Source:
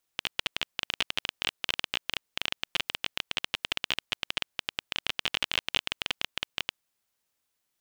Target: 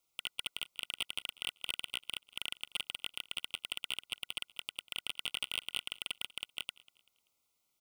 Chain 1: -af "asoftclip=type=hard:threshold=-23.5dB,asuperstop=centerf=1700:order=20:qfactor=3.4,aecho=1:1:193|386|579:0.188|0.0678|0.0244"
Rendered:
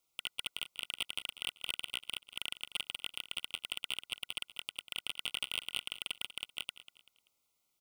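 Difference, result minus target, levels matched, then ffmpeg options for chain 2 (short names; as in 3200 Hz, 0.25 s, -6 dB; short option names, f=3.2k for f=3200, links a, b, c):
echo-to-direct +7 dB
-af "asoftclip=type=hard:threshold=-23.5dB,asuperstop=centerf=1700:order=20:qfactor=3.4,aecho=1:1:193|386|579:0.0841|0.0303|0.0109"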